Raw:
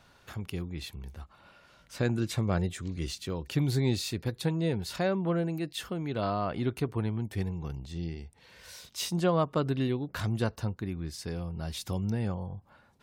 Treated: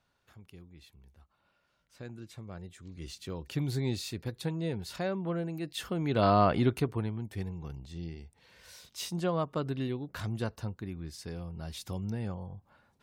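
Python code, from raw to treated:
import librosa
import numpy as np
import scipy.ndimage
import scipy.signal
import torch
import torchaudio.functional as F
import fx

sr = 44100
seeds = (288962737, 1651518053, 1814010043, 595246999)

y = fx.gain(x, sr, db=fx.line((2.59, -16.0), (3.29, -4.5), (5.53, -4.5), (6.41, 8.0), (7.16, -4.5)))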